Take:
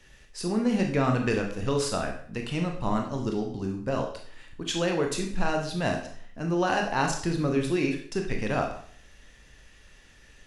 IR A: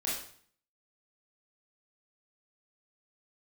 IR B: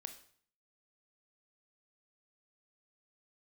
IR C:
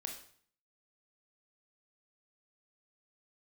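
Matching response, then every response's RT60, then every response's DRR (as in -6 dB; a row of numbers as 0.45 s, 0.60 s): C; 0.55 s, 0.55 s, 0.55 s; -6.5 dB, 7.5 dB, 2.0 dB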